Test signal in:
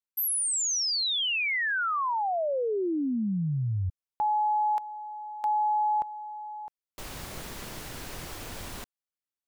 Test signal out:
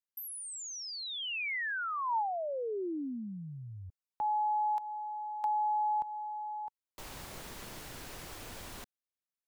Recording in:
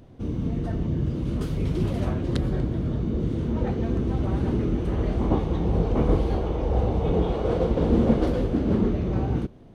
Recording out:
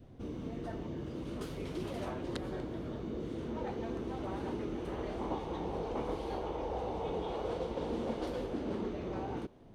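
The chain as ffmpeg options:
ffmpeg -i in.wav -filter_complex "[0:a]acrossover=split=290|2500[link_01][link_02][link_03];[link_01]acompressor=threshold=-41dB:ratio=4[link_04];[link_02]acompressor=threshold=-30dB:ratio=4[link_05];[link_03]acompressor=threshold=-38dB:ratio=4[link_06];[link_04][link_05][link_06]amix=inputs=3:normalize=0,adynamicequalizer=threshold=0.00447:dfrequency=900:dqfactor=4.5:tfrequency=900:tqfactor=4.5:attack=5:release=100:ratio=0.375:range=3.5:mode=boostabove:tftype=bell,volume=-5.5dB" out.wav

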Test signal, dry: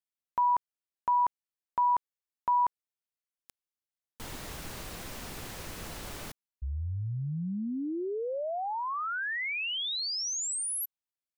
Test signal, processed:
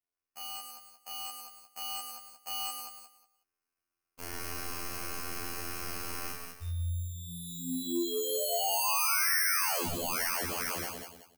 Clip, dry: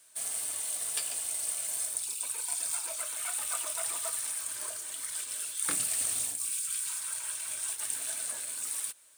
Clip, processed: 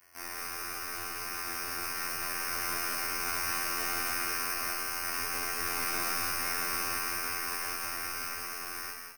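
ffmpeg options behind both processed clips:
ffmpeg -i in.wav -filter_complex "[0:a]acrusher=samples=12:mix=1:aa=0.000001,aeval=exprs='0.0316*(abs(mod(val(0)/0.0316+3,4)-2)-1)':channel_layout=same,afftfilt=real='hypot(re,im)*cos(PI*b)':imag='0':win_size=2048:overlap=0.75,asplit=2[link_01][link_02];[link_02]aecho=0:1:32.07|134.1|201.2:0.891|0.398|0.447[link_03];[link_01][link_03]amix=inputs=2:normalize=0,asoftclip=type=tanh:threshold=-20dB,crystalizer=i=3:c=0,dynaudnorm=framelen=240:gausssize=17:maxgain=6dB,asplit=2[link_04][link_05];[link_05]aecho=0:1:185|370|555:0.398|0.0955|0.0229[link_06];[link_04][link_06]amix=inputs=2:normalize=0,volume=-6.5dB" out.wav

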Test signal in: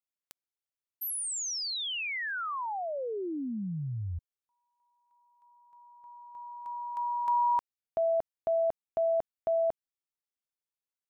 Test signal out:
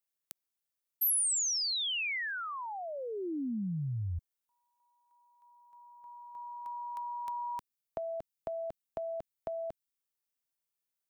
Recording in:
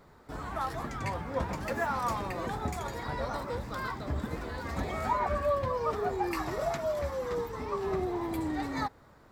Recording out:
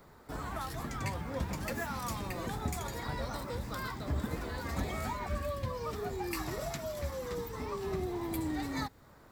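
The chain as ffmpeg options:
ffmpeg -i in.wav -filter_complex "[0:a]highshelf=frequency=8800:gain=9,acrossover=split=310|2100[link_01][link_02][link_03];[link_02]acompressor=threshold=-39dB:ratio=6:release=710:knee=2.83:detection=peak[link_04];[link_01][link_04][link_03]amix=inputs=3:normalize=0" out.wav

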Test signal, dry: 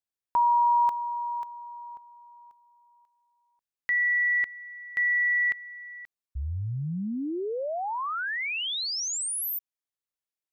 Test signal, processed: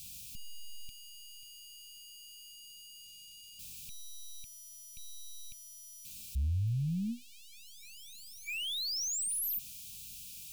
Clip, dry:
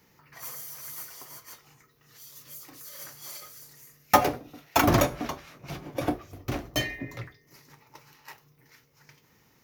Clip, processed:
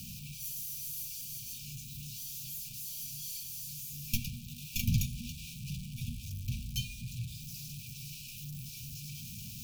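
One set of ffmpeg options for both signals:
ffmpeg -i in.wav -af "aeval=exprs='val(0)+0.5*0.0299*sgn(val(0))':channel_layout=same,aeval=exprs='0.75*(cos(1*acos(clip(val(0)/0.75,-1,1)))-cos(1*PI/2))+0.211*(cos(2*acos(clip(val(0)/0.75,-1,1)))-cos(2*PI/2))+0.015*(cos(6*acos(clip(val(0)/0.75,-1,1)))-cos(6*PI/2))':channel_layout=same,lowshelf=frequency=350:gain=5,afftfilt=real='re*(1-between(b*sr/4096,240,2300))':imag='im*(1-between(b*sr/4096,240,2300))':win_size=4096:overlap=0.75,equalizer=frequency=740:width_type=o:width=2.9:gain=-9.5,volume=-7dB" out.wav

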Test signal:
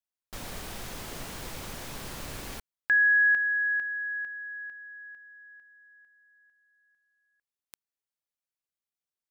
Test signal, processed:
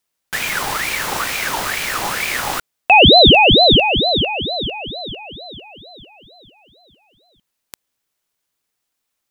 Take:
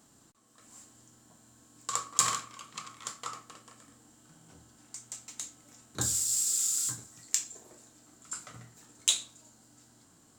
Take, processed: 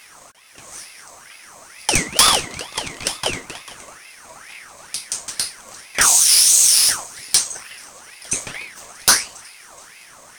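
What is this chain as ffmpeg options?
ffmpeg -i in.wav -af "apsyclip=22dB,aeval=exprs='val(0)*sin(2*PI*1600*n/s+1600*0.5/2.2*sin(2*PI*2.2*n/s))':channel_layout=same,volume=-2dB" out.wav

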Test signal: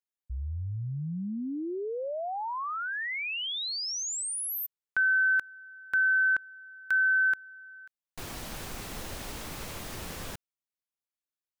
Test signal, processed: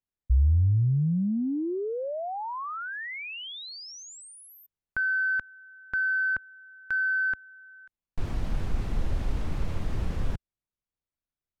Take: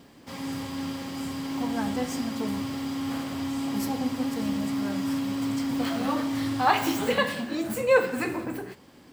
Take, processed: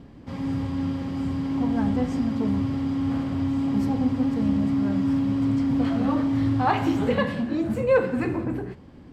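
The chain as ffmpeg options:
ffmpeg -i in.wav -filter_complex "[0:a]aemphasis=mode=reproduction:type=riaa,asplit=2[link_01][link_02];[link_02]asoftclip=type=tanh:threshold=-18.5dB,volume=-9dB[link_03];[link_01][link_03]amix=inputs=2:normalize=0,volume=-3dB" out.wav

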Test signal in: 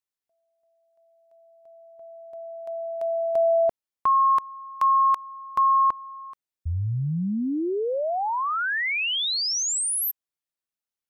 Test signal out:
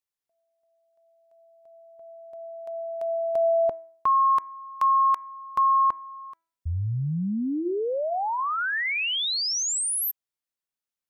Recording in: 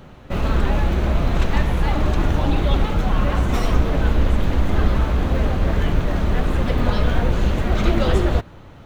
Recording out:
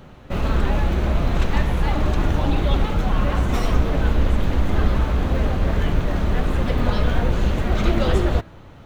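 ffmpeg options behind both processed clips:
ffmpeg -i in.wav -af "bandreject=frequency=329.3:width_type=h:width=4,bandreject=frequency=658.6:width_type=h:width=4,bandreject=frequency=987.9:width_type=h:width=4,bandreject=frequency=1317.2:width_type=h:width=4,bandreject=frequency=1646.5:width_type=h:width=4,bandreject=frequency=1975.8:width_type=h:width=4,bandreject=frequency=2305.1:width_type=h:width=4,volume=-1dB" out.wav

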